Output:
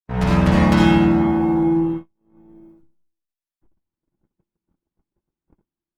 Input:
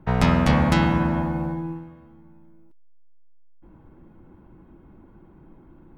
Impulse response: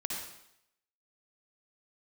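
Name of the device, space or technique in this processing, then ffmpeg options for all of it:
speakerphone in a meeting room: -filter_complex "[1:a]atrim=start_sample=2205[a];[0:a][a]afir=irnorm=-1:irlink=0,dynaudnorm=f=170:g=5:m=16.5dB,agate=range=-57dB:threshold=-22dB:ratio=16:detection=peak,volume=-2dB" -ar 48000 -c:a libopus -b:a 20k

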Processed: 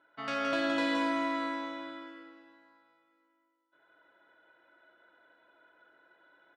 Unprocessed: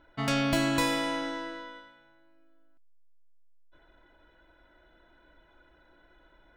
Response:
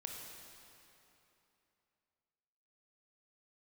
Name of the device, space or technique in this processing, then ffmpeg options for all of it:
station announcement: -filter_complex "[0:a]highpass=320,lowpass=4.2k,equalizer=f=1.4k:t=o:w=0.52:g=5.5,aecho=1:1:64.14|169.1:0.251|0.562[a];[1:a]atrim=start_sample=2205[b];[a][b]afir=irnorm=-1:irlink=0,volume=-2.5dB"

